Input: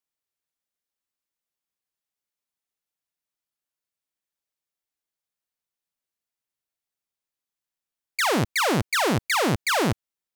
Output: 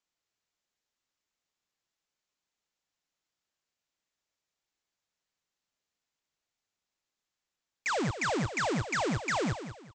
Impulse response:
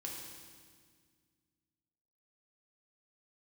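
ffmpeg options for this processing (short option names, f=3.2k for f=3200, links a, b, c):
-af "aresample=16000,asoftclip=type=tanh:threshold=-33.5dB,aresample=44100,aecho=1:1:199|398|597:0.282|0.0846|0.0254,asetrate=45938,aresample=44100,volume=4.5dB"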